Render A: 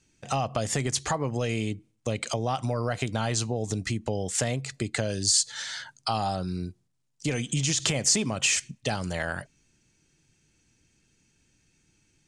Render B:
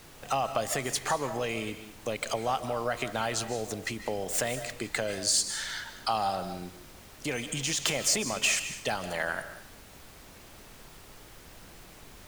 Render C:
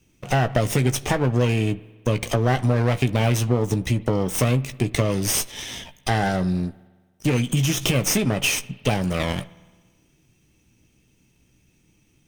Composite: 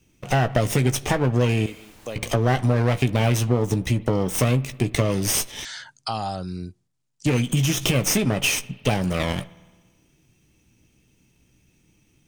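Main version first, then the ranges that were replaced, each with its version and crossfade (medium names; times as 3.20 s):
C
1.66–2.16 s: from B
5.65–7.26 s: from A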